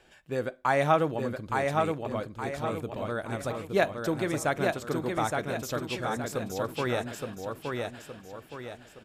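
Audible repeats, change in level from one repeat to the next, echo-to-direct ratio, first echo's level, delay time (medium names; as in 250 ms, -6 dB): 5, -7.5 dB, -2.5 dB, -3.5 dB, 868 ms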